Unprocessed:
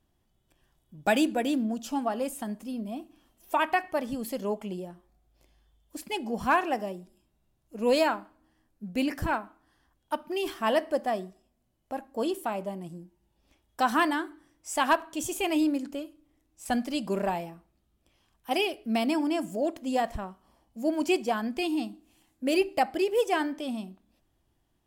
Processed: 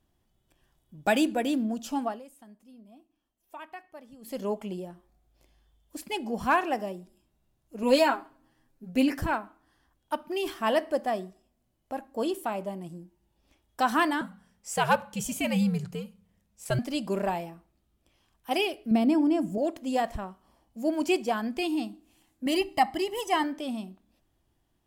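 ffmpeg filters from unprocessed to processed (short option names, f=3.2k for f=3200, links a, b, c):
-filter_complex "[0:a]asettb=1/sr,asplit=3[a][b][c];[a]atrim=end=7.824[d];[b]atrim=start=7.82:end=9.21,asetpts=PTS-STARTPTS,afade=t=in:d=0.004:c=qsin,afade=t=out:st=1.386:d=0.004:c=qsin,aecho=1:1:7.4:0.77,atrim=end_sample=61299[e];[c]atrim=start=9.206[f];[d][e]acrossfade=d=0.004:c1=hsin:c2=qsin[g];[g][f]acrossfade=d=0.004:c1=qsin:c2=hsin,asettb=1/sr,asplit=3[h][i][j];[h]atrim=end=14.214[k];[i]atrim=start=14.21:end=16.79,asetpts=PTS-STARTPTS,afade=t=in:d=0.004:c=qsin,afade=t=out:st=2.576:d=0.004:c=qsin,afreqshift=-110[l];[j]atrim=start=16.786[m];[k][l]acrossfade=d=0.004:c1=hsin:c2=qsin[n];[n][m]acrossfade=d=0.004:c1=qsin:c2=hsin,asettb=1/sr,asplit=3[o][p][q];[o]atrim=end=18.914[r];[p]atrim=start=18.91:end=19.58,asetpts=PTS-STARTPTS,afade=t=in:d=0.004:c=qsin,afade=t=out:st=0.666:d=0.004:c=qsin,tiltshelf=f=630:g=7.5[s];[q]atrim=start=19.576[t];[r][s]acrossfade=d=0.004:c1=hsin:c2=qsin[u];[u][t]acrossfade=d=0.004:c1=qsin:c2=hsin,asettb=1/sr,asplit=3[v][w][x];[v]atrim=end=22.464[y];[w]atrim=start=22.46:end=23.44,asetpts=PTS-STARTPTS,afade=t=in:d=0.004:c=qsin,afade=t=out:st=0.976:d=0.004:c=qsin,aecho=1:1:1:0.76,atrim=end_sample=43218[z];[x]atrim=start=23.436[aa];[y][z]acrossfade=d=0.004:c1=hsin:c2=qsin[ab];[ab][aa]acrossfade=d=0.004:c1=qsin:c2=hsin,asplit=3[ac][ad][ae];[ac]atrim=end=2.22,asetpts=PTS-STARTPTS,afade=t=out:st=2.04:d=0.18:silence=0.133352[af];[ad]atrim=start=2.22:end=4.21,asetpts=PTS-STARTPTS,volume=-17.5dB[ag];[ae]atrim=start=4.21,asetpts=PTS-STARTPTS,afade=t=in:d=0.18:silence=0.133352[ah];[af][ag][ah]concat=n=3:v=0:a=1"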